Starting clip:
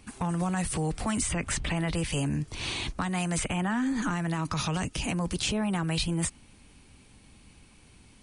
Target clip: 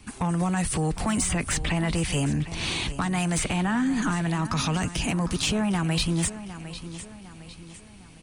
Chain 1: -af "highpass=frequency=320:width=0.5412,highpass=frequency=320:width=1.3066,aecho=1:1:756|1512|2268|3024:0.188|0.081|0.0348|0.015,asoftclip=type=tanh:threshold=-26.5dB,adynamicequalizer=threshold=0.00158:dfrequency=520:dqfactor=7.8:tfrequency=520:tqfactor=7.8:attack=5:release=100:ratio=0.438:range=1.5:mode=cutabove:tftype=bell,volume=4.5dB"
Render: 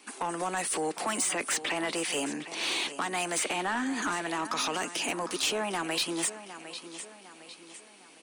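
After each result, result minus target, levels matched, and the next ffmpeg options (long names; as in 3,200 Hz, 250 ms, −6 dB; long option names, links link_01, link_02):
250 Hz band −6.0 dB; soft clipping: distortion +8 dB
-af "aecho=1:1:756|1512|2268|3024:0.188|0.081|0.0348|0.015,asoftclip=type=tanh:threshold=-26.5dB,adynamicequalizer=threshold=0.00158:dfrequency=520:dqfactor=7.8:tfrequency=520:tqfactor=7.8:attack=5:release=100:ratio=0.438:range=1.5:mode=cutabove:tftype=bell,volume=4.5dB"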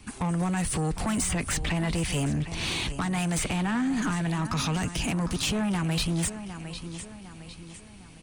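soft clipping: distortion +9 dB
-af "aecho=1:1:756|1512|2268|3024:0.188|0.081|0.0348|0.015,asoftclip=type=tanh:threshold=-19.5dB,adynamicequalizer=threshold=0.00158:dfrequency=520:dqfactor=7.8:tfrequency=520:tqfactor=7.8:attack=5:release=100:ratio=0.438:range=1.5:mode=cutabove:tftype=bell,volume=4.5dB"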